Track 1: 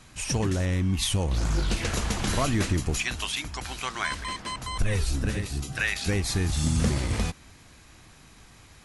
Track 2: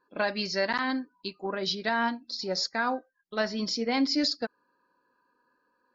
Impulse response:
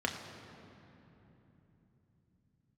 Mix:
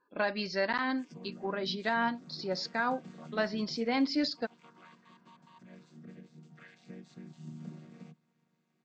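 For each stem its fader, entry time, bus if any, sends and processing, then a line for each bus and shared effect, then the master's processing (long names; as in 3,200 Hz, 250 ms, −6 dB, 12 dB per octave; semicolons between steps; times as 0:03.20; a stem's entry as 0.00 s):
−19.5 dB, 0.80 s, no send, channel vocoder with a chord as carrier minor triad, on D#3
−2.5 dB, 0.00 s, no send, low-pass filter 4,000 Hz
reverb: not used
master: no processing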